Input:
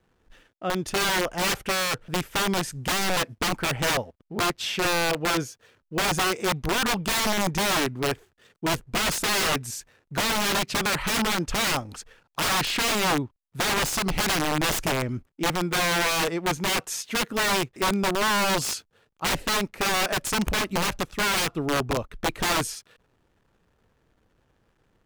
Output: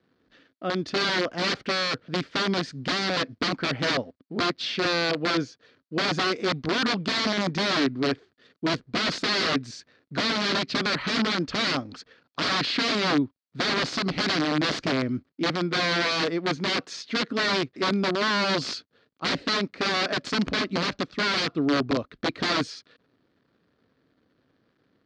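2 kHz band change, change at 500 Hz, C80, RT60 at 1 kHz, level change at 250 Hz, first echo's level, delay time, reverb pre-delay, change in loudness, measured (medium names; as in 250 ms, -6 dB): -1.0 dB, 0.0 dB, no reverb, no reverb, +2.5 dB, no echo, no echo, no reverb, -1.0 dB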